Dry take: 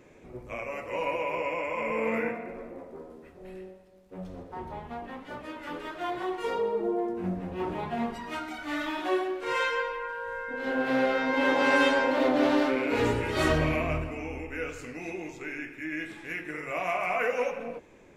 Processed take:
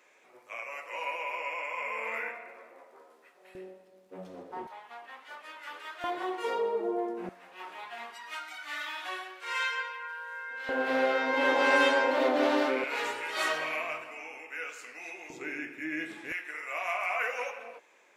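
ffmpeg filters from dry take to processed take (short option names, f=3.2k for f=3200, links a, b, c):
-af "asetnsamples=n=441:p=0,asendcmd='3.55 highpass f 280;4.67 highpass f 1100;6.04 highpass f 380;7.29 highpass f 1300;10.69 highpass f 360;12.84 highpass f 890;15.3 highpass f 210;16.32 highpass f 870',highpass=960"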